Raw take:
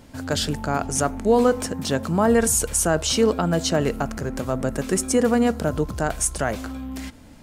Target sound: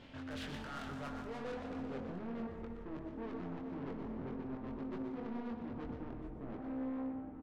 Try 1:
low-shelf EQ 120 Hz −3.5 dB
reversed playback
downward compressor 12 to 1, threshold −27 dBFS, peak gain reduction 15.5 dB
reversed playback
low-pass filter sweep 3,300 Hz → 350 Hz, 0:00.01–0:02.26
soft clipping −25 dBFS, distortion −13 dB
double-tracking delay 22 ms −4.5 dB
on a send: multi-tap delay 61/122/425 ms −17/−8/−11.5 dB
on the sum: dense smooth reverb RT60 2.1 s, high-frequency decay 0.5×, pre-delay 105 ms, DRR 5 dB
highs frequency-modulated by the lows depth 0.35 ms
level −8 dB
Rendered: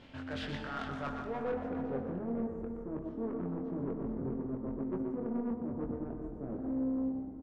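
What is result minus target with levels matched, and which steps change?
soft clipping: distortion −8 dB
change: soft clipping −36 dBFS, distortion −5 dB

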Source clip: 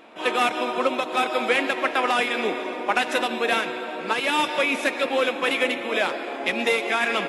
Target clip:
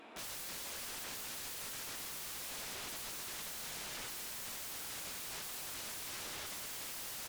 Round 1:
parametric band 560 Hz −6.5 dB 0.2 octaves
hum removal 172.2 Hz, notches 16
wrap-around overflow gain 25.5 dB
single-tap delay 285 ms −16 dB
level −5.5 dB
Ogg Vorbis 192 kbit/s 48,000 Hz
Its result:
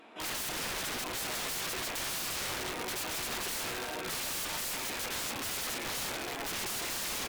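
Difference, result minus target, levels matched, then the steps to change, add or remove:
wrap-around overflow: distortion −39 dB
change: wrap-around overflow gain 34 dB

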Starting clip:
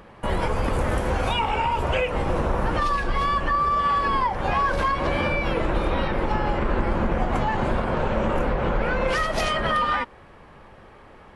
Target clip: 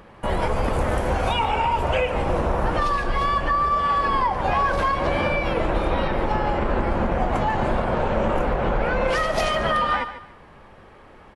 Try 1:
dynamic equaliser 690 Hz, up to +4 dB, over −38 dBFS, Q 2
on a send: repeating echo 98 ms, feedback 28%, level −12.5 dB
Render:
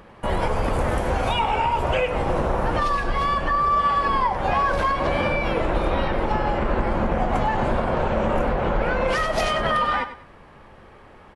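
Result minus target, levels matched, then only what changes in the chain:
echo 47 ms early
change: repeating echo 145 ms, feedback 28%, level −12.5 dB

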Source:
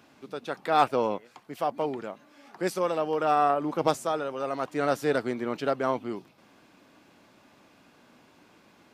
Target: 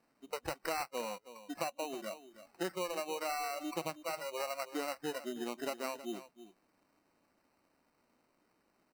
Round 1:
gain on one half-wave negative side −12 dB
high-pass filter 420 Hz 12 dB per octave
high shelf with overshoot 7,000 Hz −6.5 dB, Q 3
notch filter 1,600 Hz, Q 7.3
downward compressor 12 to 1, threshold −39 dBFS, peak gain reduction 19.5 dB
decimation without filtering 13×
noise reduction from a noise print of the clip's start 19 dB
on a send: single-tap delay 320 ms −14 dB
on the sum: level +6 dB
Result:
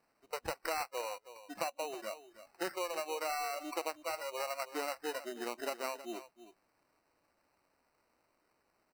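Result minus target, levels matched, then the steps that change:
125 Hz band −8.0 dB
change: high-pass filter 170 Hz 12 dB per octave

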